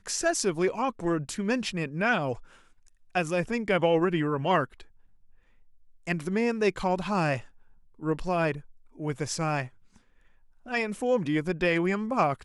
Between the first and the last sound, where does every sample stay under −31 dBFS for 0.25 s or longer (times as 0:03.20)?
0:02.34–0:03.15
0:04.65–0:06.08
0:07.40–0:08.03
0:08.57–0:09.01
0:09.65–0:10.71